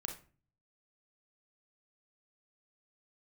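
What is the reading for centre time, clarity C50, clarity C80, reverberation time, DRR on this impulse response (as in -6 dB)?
18 ms, 8.5 dB, 15.0 dB, not exponential, 3.0 dB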